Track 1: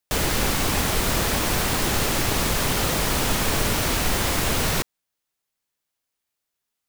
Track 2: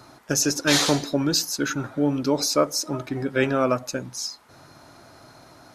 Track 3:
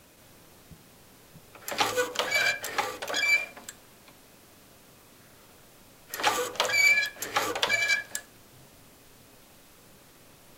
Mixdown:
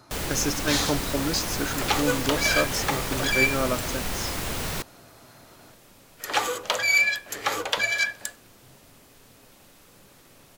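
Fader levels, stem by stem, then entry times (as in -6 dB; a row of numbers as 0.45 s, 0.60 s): -7.5 dB, -5.0 dB, +1.0 dB; 0.00 s, 0.00 s, 0.10 s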